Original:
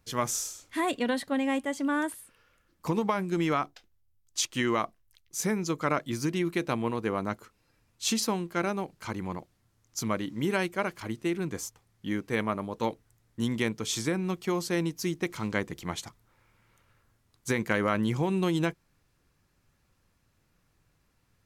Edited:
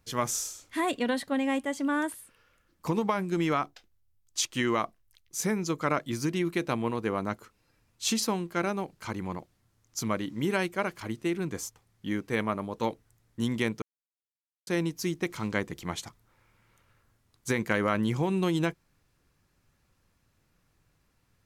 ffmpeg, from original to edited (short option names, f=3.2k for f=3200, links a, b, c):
-filter_complex "[0:a]asplit=3[a][b][c];[a]atrim=end=13.82,asetpts=PTS-STARTPTS,afade=t=out:st=13.816:d=0.004:c=hsin[d];[b]atrim=start=13.82:end=14.67,asetpts=PTS-STARTPTS,volume=0[e];[c]atrim=start=14.67,asetpts=PTS-STARTPTS,afade=t=in:d=0.004:c=hsin[f];[d][e][f]concat=n=3:v=0:a=1"